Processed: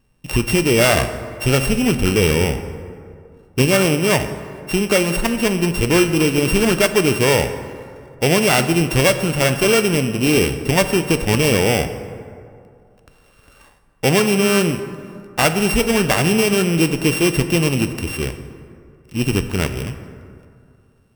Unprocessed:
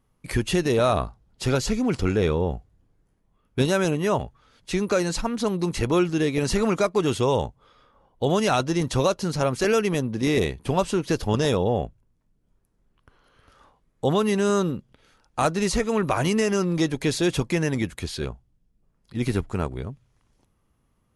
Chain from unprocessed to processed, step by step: sorted samples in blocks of 16 samples; plate-style reverb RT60 2.4 s, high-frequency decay 0.45×, DRR 8.5 dB; trim +6 dB

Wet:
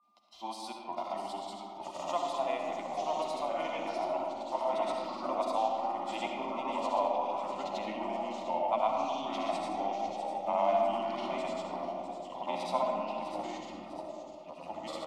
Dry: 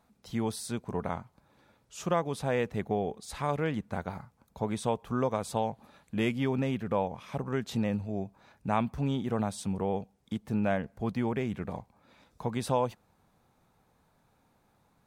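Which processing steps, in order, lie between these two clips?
high-pass 150 Hz 6 dB/octave; comb 2.9 ms, depth 40%; ever faster or slower copies 757 ms, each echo -2 st, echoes 3; granulator 100 ms, grains 20 per s, pitch spread up and down by 0 st; in parallel at -3.5 dB: saturation -22.5 dBFS, distortion -16 dB; on the sum: whistle 1.2 kHz -63 dBFS; three-band isolator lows -19 dB, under 540 Hz, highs -18 dB, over 4.4 kHz; static phaser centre 440 Hz, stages 6; feedback echo behind a high-pass 651 ms, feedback 52%, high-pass 4.6 kHz, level -7.5 dB; on a send at -1 dB: reverberation RT60 2.6 s, pre-delay 28 ms

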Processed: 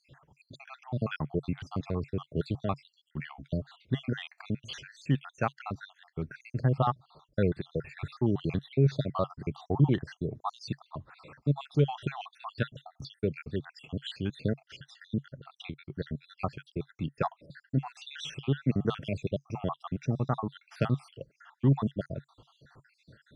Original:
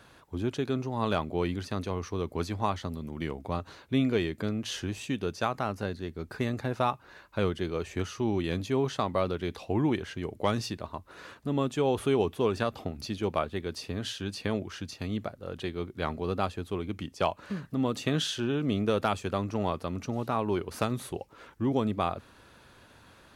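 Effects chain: random holes in the spectrogram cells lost 67%; low-pass 4.5 kHz 12 dB/octave; peaking EQ 140 Hz +13.5 dB 0.53 oct; band-stop 980 Hz, Q 19

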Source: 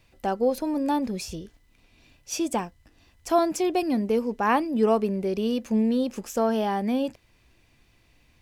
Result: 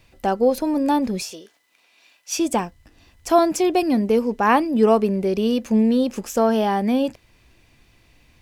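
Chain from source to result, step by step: 1.22–2.37 s: high-pass 450 Hz -> 950 Hz 12 dB/octave; trim +5.5 dB

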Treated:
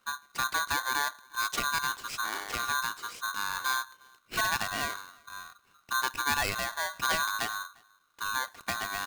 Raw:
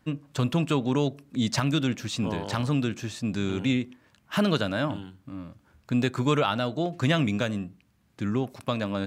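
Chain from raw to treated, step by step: echo from a far wall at 60 m, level -28 dB; polarity switched at an audio rate 1.3 kHz; trim -5.5 dB

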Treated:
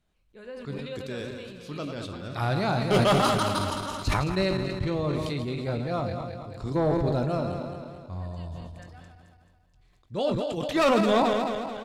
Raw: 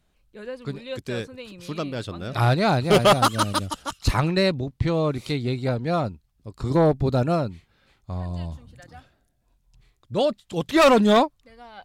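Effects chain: backward echo that repeats 109 ms, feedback 72%, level -8.5 dB; treble shelf 11 kHz -6.5 dB; doubling 21 ms -12 dB; decay stretcher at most 27 dB/s; trim -7 dB

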